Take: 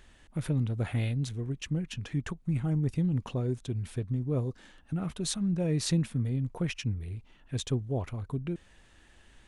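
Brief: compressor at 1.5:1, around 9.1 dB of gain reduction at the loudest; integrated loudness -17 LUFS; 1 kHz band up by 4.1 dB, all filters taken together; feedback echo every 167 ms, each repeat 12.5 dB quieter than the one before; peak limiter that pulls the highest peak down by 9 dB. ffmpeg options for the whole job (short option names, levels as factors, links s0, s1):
-af "equalizer=f=1000:t=o:g=5.5,acompressor=threshold=0.00355:ratio=1.5,alimiter=level_in=2.51:limit=0.0631:level=0:latency=1,volume=0.398,aecho=1:1:167|334|501:0.237|0.0569|0.0137,volume=15.8"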